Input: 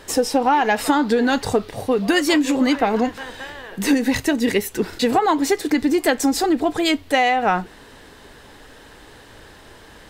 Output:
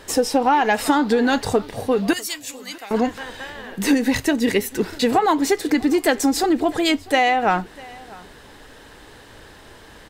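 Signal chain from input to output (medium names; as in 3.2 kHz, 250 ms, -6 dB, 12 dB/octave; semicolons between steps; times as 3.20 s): 2.13–2.91 s: pre-emphasis filter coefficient 0.97; delay 648 ms -22.5 dB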